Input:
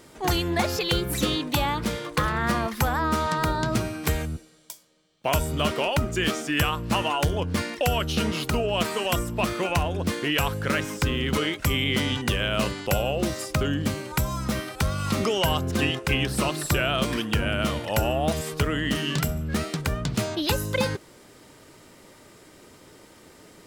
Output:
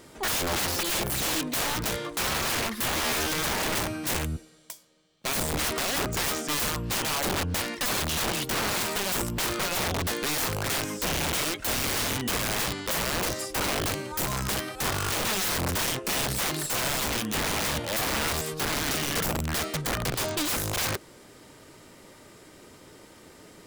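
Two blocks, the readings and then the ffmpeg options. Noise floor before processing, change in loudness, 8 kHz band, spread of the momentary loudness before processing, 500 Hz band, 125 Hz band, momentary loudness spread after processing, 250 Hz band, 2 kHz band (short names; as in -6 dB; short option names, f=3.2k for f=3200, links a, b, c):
-52 dBFS, -1.5 dB, +6.5 dB, 4 LU, -5.5 dB, -7.5 dB, 3 LU, -6.5 dB, -1.0 dB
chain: -af "aeval=exprs='(mod(13.3*val(0)+1,2)-1)/13.3':c=same"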